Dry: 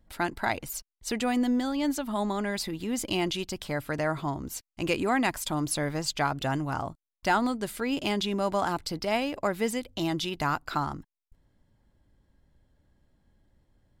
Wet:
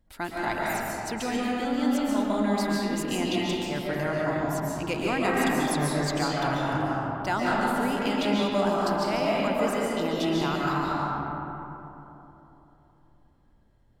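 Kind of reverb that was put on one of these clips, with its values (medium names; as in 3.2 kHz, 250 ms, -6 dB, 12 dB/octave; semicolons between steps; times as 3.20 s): algorithmic reverb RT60 3.3 s, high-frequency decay 0.4×, pre-delay 100 ms, DRR -5.5 dB; trim -4 dB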